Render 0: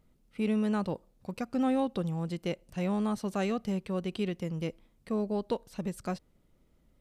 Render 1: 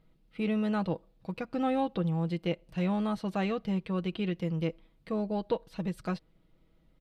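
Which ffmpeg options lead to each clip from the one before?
-filter_complex "[0:a]highshelf=f=5100:t=q:w=1.5:g=-8,aecho=1:1:6.2:0.47,acrossover=split=3400[s0][s1];[s1]alimiter=level_in=9.44:limit=0.0631:level=0:latency=1:release=235,volume=0.106[s2];[s0][s2]amix=inputs=2:normalize=0"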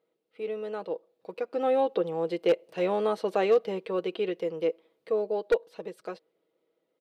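-af "highpass=f=440:t=q:w=3.9,dynaudnorm=f=470:g=7:m=3.98,aeval=exprs='0.473*(abs(mod(val(0)/0.473+3,4)-2)-1)':c=same,volume=0.398"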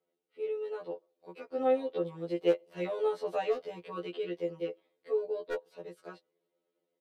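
-af "afftfilt=real='re*2*eq(mod(b,4),0)':imag='im*2*eq(mod(b,4),0)':win_size=2048:overlap=0.75,volume=0.631"

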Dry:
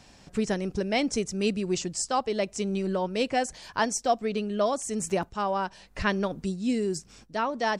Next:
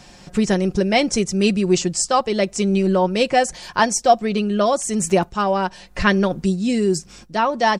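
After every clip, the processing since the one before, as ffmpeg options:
-af "aecho=1:1:5.6:0.41,volume=2.66"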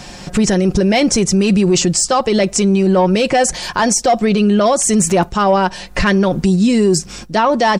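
-af "acontrast=52,alimiter=limit=0.266:level=0:latency=1:release=32,volume=1.88"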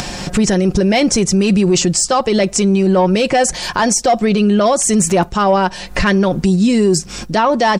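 -af "acompressor=mode=upward:threshold=0.158:ratio=2.5"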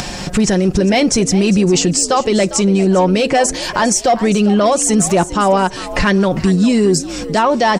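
-filter_complex "[0:a]asplit=4[s0][s1][s2][s3];[s1]adelay=402,afreqshift=77,volume=0.178[s4];[s2]adelay=804,afreqshift=154,volume=0.0624[s5];[s3]adelay=1206,afreqshift=231,volume=0.0219[s6];[s0][s4][s5][s6]amix=inputs=4:normalize=0"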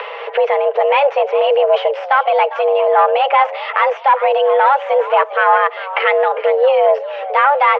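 -af "aeval=exprs='0.708*(cos(1*acos(clip(val(0)/0.708,-1,1)))-cos(1*PI/2))+0.178*(cos(2*acos(clip(val(0)/0.708,-1,1)))-cos(2*PI/2))':c=same,highpass=f=180:t=q:w=0.5412,highpass=f=180:t=q:w=1.307,lowpass=f=2700:t=q:w=0.5176,lowpass=f=2700:t=q:w=0.7071,lowpass=f=2700:t=q:w=1.932,afreqshift=280,volume=1.12"

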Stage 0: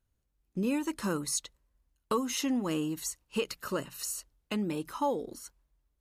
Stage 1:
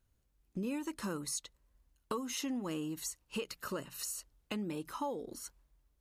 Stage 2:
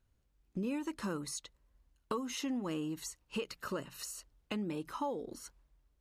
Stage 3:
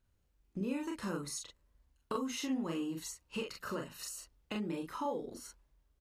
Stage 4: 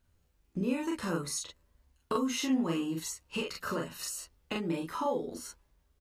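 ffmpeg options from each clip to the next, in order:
-af "acompressor=threshold=0.00501:ratio=2,volume=1.41"
-af "highshelf=f=7400:g=-9.5,volume=1.12"
-af "aecho=1:1:30|42:0.422|0.668,volume=0.794"
-filter_complex "[0:a]asplit=2[s0][s1];[s1]adelay=12,volume=0.422[s2];[s0][s2]amix=inputs=2:normalize=0,volume=1.68"

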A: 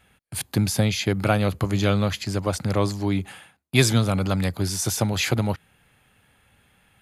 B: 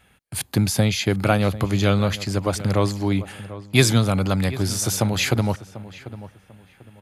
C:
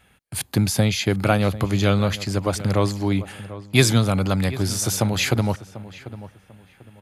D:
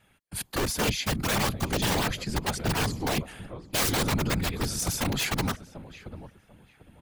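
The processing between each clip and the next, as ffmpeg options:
-filter_complex "[0:a]asplit=2[s0][s1];[s1]adelay=743,lowpass=f=2200:p=1,volume=0.168,asplit=2[s2][s3];[s3]adelay=743,lowpass=f=2200:p=1,volume=0.28,asplit=2[s4][s5];[s5]adelay=743,lowpass=f=2200:p=1,volume=0.28[s6];[s0][s2][s4][s6]amix=inputs=4:normalize=0,volume=1.26"
-af anull
-af "aeval=exprs='(mod(4.73*val(0)+1,2)-1)/4.73':c=same,afftfilt=real='hypot(re,im)*cos(2*PI*random(0))':imag='hypot(re,im)*sin(2*PI*random(1))':win_size=512:overlap=0.75"

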